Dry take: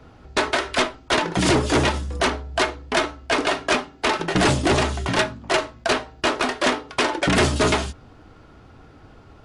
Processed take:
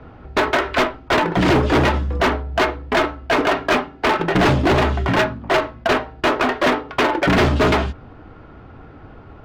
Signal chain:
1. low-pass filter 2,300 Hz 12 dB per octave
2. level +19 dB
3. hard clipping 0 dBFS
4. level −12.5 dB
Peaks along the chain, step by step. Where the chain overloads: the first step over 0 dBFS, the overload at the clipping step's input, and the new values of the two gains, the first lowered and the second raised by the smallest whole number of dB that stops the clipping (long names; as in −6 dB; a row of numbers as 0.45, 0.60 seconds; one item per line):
−12.0, +7.0, 0.0, −12.5 dBFS
step 2, 7.0 dB
step 2 +12 dB, step 4 −5.5 dB